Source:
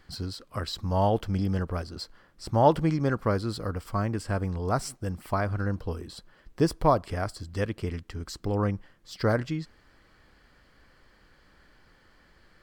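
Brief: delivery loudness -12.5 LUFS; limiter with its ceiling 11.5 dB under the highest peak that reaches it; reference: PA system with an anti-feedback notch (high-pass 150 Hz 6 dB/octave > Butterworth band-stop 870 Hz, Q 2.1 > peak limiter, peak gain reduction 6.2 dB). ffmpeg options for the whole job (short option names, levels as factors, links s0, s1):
-af "alimiter=limit=0.112:level=0:latency=1,highpass=f=150:p=1,asuperstop=centerf=870:order=8:qfactor=2.1,volume=15.8,alimiter=limit=0.891:level=0:latency=1"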